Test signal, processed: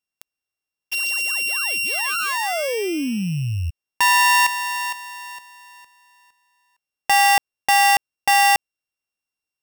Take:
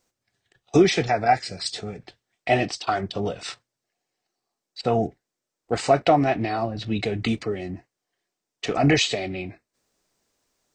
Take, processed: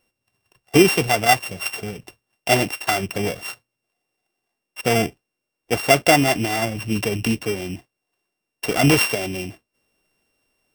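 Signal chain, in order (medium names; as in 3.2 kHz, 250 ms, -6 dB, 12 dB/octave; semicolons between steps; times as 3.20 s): sorted samples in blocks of 16 samples; trim +3 dB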